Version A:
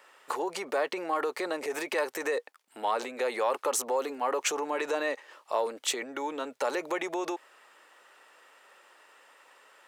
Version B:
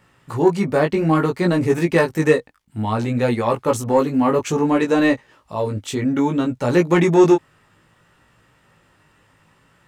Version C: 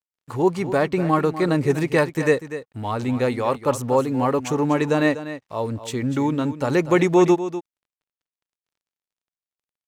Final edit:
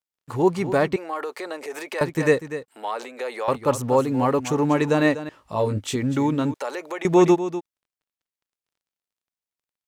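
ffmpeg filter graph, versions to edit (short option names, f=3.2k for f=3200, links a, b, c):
-filter_complex "[0:a]asplit=3[a][b][c];[2:a]asplit=5[d][e][f][g][h];[d]atrim=end=0.962[i];[a]atrim=start=0.958:end=2.012[j];[e]atrim=start=2.008:end=2.682[k];[b]atrim=start=2.678:end=3.482[l];[f]atrim=start=3.478:end=5.292[m];[1:a]atrim=start=5.288:end=5.962[n];[g]atrim=start=5.958:end=6.542[o];[c]atrim=start=6.538:end=7.052[p];[h]atrim=start=7.048[q];[i][j]acrossfade=d=0.004:c1=hsin:c2=hsin[r];[r][k]acrossfade=d=0.004:c1=hsin:c2=hsin[s];[s][l]acrossfade=d=0.004:c1=hsin:c2=hsin[t];[t][m]acrossfade=d=0.004:c1=hsin:c2=hsin[u];[u][n]acrossfade=d=0.004:c1=hsin:c2=hsin[v];[v][o]acrossfade=d=0.004:c1=hsin:c2=hsin[w];[w][p]acrossfade=d=0.004:c1=hsin:c2=hsin[x];[x][q]acrossfade=d=0.004:c1=hsin:c2=hsin"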